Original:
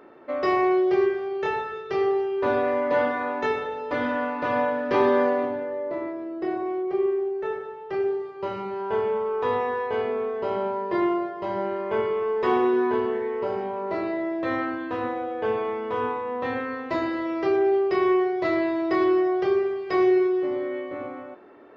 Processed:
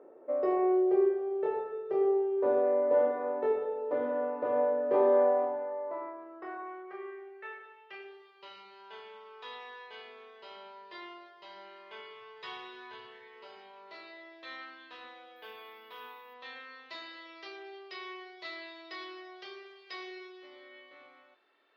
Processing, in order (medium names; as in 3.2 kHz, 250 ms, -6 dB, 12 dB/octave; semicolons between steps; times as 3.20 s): 12.14–13.36 s: resonant low shelf 190 Hz +8.5 dB, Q 3; 15.36–16.34 s: careless resampling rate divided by 3×, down filtered, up hold; band-pass sweep 500 Hz -> 3.9 kHz, 4.78–8.58 s